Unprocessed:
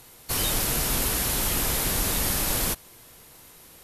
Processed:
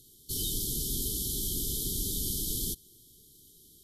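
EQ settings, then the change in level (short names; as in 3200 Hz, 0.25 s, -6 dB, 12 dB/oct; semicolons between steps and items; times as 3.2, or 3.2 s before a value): brick-wall FIR band-stop 450–3000 Hz; -6.5 dB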